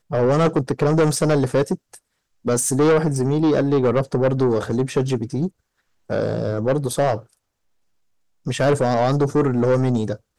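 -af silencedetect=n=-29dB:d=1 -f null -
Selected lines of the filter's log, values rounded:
silence_start: 7.19
silence_end: 8.47 | silence_duration: 1.27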